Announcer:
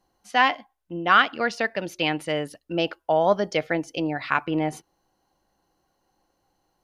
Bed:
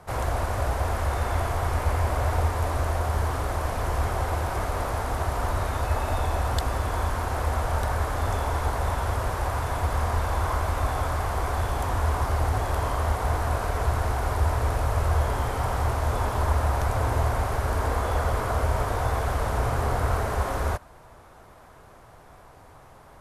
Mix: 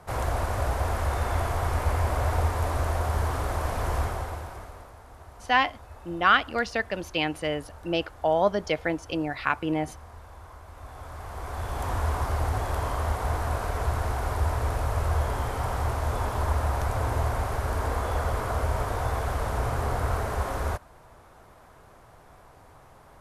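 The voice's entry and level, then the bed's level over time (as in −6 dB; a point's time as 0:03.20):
5.15 s, −2.5 dB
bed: 0:03.98 −1 dB
0:04.96 −20.5 dB
0:10.65 −20.5 dB
0:11.89 −2.5 dB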